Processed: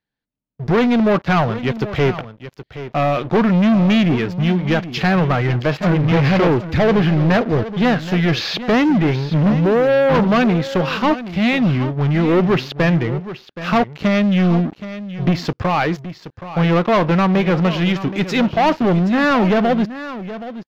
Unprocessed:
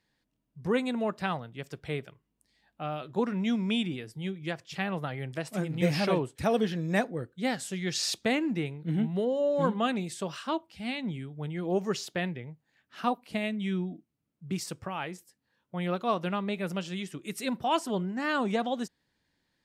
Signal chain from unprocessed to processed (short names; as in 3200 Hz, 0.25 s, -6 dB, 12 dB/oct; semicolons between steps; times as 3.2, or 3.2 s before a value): treble ducked by the level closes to 2800 Hz, closed at -28 dBFS; sample leveller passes 5; in parallel at -1.5 dB: vocal rider 2 s; on the sum: varispeed -5%; running mean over 5 samples; on a send: echo 0.773 s -13.5 dB; on the sum: gain -3 dB